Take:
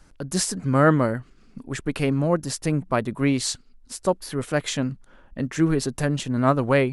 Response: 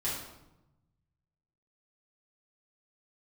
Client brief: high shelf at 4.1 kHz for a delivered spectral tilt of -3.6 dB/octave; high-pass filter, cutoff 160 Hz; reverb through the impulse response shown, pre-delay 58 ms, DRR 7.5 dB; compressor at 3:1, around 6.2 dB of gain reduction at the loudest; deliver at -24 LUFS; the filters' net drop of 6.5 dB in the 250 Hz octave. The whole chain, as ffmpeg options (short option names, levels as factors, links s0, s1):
-filter_complex "[0:a]highpass=160,equalizer=f=250:t=o:g=-7.5,highshelf=f=4100:g=5.5,acompressor=threshold=0.0708:ratio=3,asplit=2[s0][s1];[1:a]atrim=start_sample=2205,adelay=58[s2];[s1][s2]afir=irnorm=-1:irlink=0,volume=0.224[s3];[s0][s3]amix=inputs=2:normalize=0,volume=1.58"